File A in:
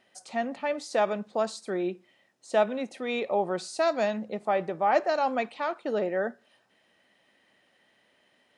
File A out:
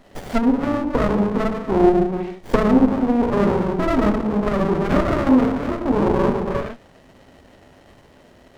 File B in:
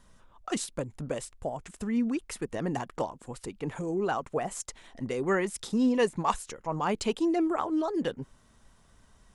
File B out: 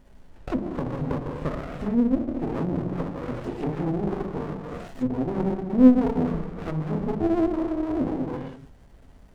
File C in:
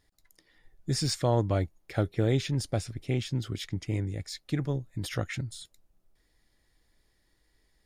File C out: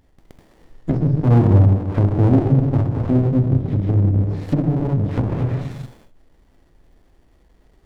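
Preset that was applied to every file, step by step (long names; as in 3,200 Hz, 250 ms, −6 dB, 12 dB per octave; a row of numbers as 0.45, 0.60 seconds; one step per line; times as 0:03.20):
reverb whose tail is shaped and stops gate 480 ms falling, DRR −4 dB
treble cut that deepens with the level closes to 320 Hz, closed at −24 dBFS
windowed peak hold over 33 samples
normalise the peak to −3 dBFS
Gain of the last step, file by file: +15.5, +4.5, +11.5 decibels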